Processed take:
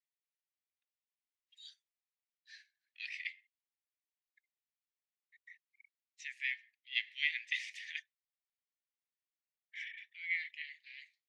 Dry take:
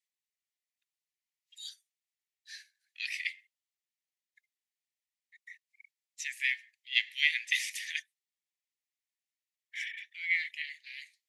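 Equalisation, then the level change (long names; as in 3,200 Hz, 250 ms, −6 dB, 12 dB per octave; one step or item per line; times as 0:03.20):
high-pass filter 1,400 Hz
high-frequency loss of the air 92 metres
high-shelf EQ 5,900 Hz −10.5 dB
−3.5 dB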